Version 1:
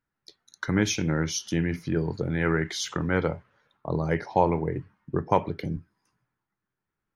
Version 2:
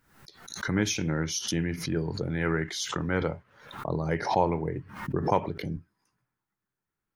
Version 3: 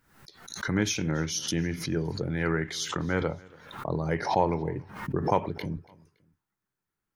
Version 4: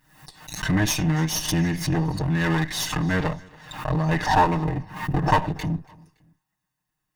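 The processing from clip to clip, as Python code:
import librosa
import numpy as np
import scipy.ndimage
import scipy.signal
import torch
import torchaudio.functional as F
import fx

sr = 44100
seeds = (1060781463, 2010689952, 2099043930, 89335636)

y1 = fx.high_shelf(x, sr, hz=7600.0, db=4.5)
y1 = fx.pre_swell(y1, sr, db_per_s=83.0)
y1 = F.gain(torch.from_numpy(y1), -3.0).numpy()
y2 = fx.echo_feedback(y1, sr, ms=283, feedback_pct=35, wet_db=-24)
y3 = fx.lower_of_two(y2, sr, delay_ms=6.5)
y3 = y3 + 0.56 * np.pad(y3, (int(1.1 * sr / 1000.0), 0))[:len(y3)]
y3 = F.gain(torch.from_numpy(y3), 6.0).numpy()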